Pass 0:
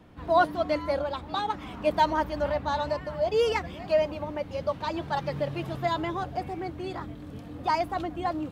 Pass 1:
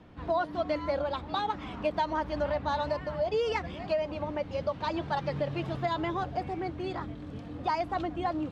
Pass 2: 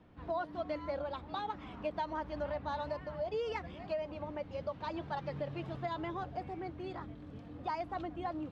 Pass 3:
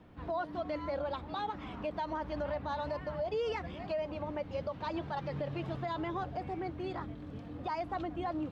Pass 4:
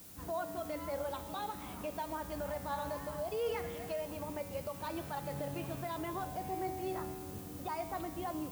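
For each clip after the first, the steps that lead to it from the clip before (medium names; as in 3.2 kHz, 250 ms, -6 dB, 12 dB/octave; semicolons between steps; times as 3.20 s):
low-pass 5.9 kHz 12 dB/octave; compression 10:1, threshold -25 dBFS, peak gain reduction 9.5 dB
treble shelf 4.9 kHz -6.5 dB; trim -7.5 dB
peak limiter -31.5 dBFS, peak gain reduction 5.5 dB; trim +4 dB
added noise blue -51 dBFS; feedback comb 94 Hz, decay 2 s, mix 80%; trim +9.5 dB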